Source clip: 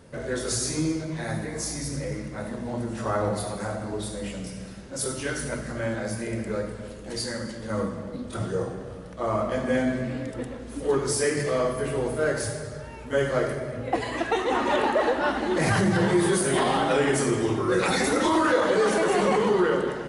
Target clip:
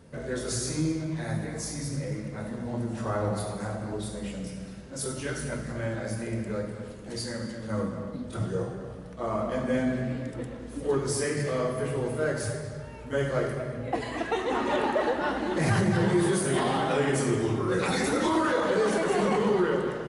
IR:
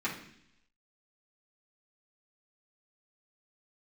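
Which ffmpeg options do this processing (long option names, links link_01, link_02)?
-filter_complex "[0:a]equalizer=frequency=130:width_type=o:width=2:gain=5,asplit=2[link_01][link_02];[link_02]adelay=230,highpass=300,lowpass=3400,asoftclip=type=hard:threshold=-18.5dB,volume=-10dB[link_03];[link_01][link_03]amix=inputs=2:normalize=0,flanger=delay=4.4:depth=4.4:regen=-82:speed=0.21:shape=sinusoidal"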